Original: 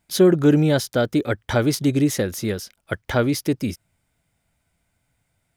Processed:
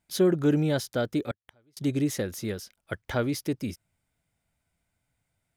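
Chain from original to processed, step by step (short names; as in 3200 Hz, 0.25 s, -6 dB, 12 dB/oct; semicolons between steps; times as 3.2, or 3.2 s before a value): 1.31–1.77 flipped gate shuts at -25 dBFS, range -38 dB; gain -7.5 dB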